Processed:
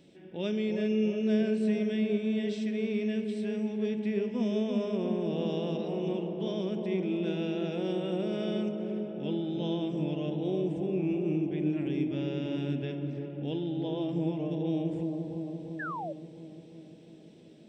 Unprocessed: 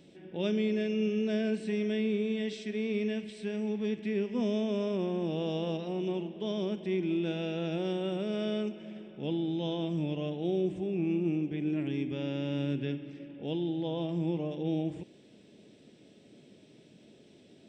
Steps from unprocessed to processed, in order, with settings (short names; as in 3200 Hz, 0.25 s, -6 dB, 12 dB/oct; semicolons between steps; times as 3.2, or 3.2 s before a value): dark delay 0.345 s, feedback 68%, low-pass 890 Hz, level -4 dB; on a send at -16 dB: reverb RT60 3.6 s, pre-delay 26 ms; on the sum: painted sound fall, 15.79–16.13, 540–1800 Hz -35 dBFS; gain -1.5 dB